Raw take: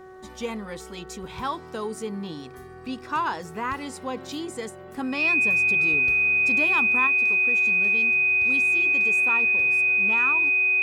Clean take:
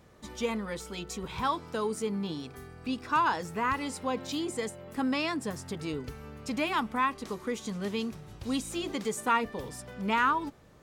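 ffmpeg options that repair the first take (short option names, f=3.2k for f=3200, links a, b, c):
-af "bandreject=f=374.7:t=h:w=4,bandreject=f=749.4:t=h:w=4,bandreject=f=1.1241k:t=h:w=4,bandreject=f=1.4988k:t=h:w=4,bandreject=f=1.8735k:t=h:w=4,bandreject=f=2.5k:w=30,asetnsamples=n=441:p=0,asendcmd='7.07 volume volume 5.5dB',volume=0dB"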